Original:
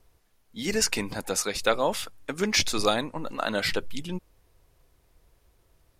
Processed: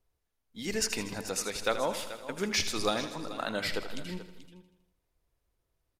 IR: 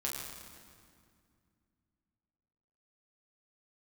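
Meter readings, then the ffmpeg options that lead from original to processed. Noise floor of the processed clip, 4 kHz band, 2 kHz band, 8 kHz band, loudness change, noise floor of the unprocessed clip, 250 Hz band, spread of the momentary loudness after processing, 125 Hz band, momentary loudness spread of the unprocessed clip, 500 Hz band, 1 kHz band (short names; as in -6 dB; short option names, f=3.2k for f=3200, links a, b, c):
-81 dBFS, -5.5 dB, -5.5 dB, -5.5 dB, -5.5 dB, -66 dBFS, -5.0 dB, 11 LU, -5.5 dB, 12 LU, -5.5 dB, -5.5 dB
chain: -filter_complex "[0:a]asplit=2[a][b];[b]aecho=0:1:80|160|240|320|400|480|560:0.266|0.154|0.0895|0.0519|0.0301|0.0175|0.0101[c];[a][c]amix=inputs=2:normalize=0,agate=range=-10dB:threshold=-54dB:ratio=16:detection=peak,asplit=2[d][e];[e]aecho=0:1:433:0.188[f];[d][f]amix=inputs=2:normalize=0,volume=-6dB"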